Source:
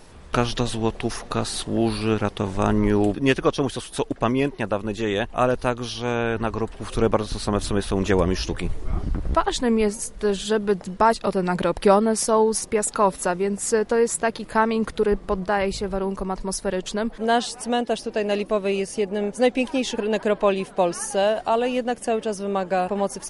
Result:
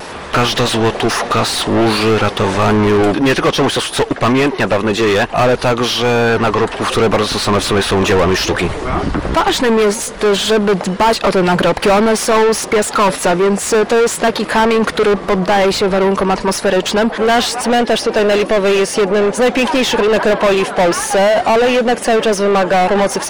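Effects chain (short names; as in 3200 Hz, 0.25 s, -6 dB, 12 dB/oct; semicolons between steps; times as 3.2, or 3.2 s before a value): overdrive pedal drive 33 dB, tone 2600 Hz, clips at -4 dBFS; vibrato 0.5 Hz 11 cents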